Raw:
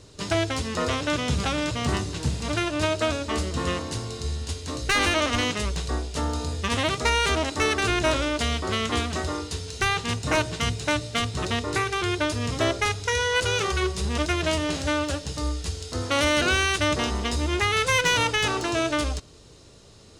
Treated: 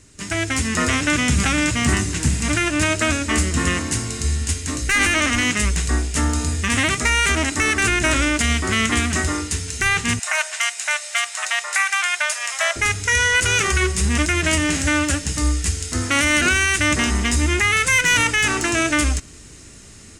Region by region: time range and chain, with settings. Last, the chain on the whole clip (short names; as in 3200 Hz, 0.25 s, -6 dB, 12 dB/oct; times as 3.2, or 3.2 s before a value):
10.19–12.76 upward compressor, threshold -28 dBFS + elliptic high-pass 640 Hz, stop band 60 dB
whole clip: graphic EQ 125/250/500/1000/2000/4000/8000 Hz -5/+3/-11/-6/+7/-10/+8 dB; AGC gain up to 8.5 dB; maximiser +8 dB; gain -6.5 dB